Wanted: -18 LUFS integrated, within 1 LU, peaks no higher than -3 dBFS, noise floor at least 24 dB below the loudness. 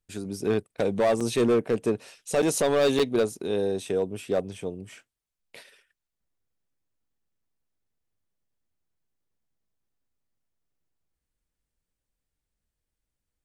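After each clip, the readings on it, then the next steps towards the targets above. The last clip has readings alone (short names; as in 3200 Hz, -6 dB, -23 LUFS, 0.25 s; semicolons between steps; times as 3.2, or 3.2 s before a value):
clipped 0.8%; flat tops at -17.0 dBFS; dropouts 3; longest dropout 6.1 ms; loudness -26.0 LUFS; peak -17.0 dBFS; loudness target -18.0 LUFS
-> clip repair -17 dBFS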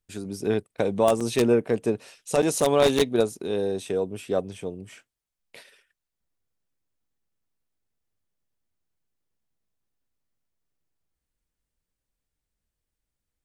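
clipped 0.0%; dropouts 3; longest dropout 6.1 ms
-> interpolate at 1.2/2.42/2.99, 6.1 ms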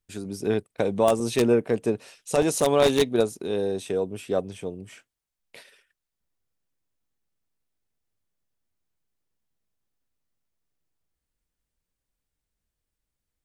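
dropouts 0; loudness -24.5 LUFS; peak -8.0 dBFS; loudness target -18.0 LUFS
-> gain +6.5 dB; limiter -3 dBFS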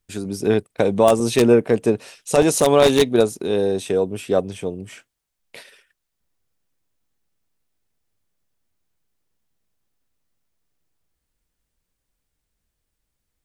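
loudness -18.5 LUFS; peak -3.0 dBFS; noise floor -78 dBFS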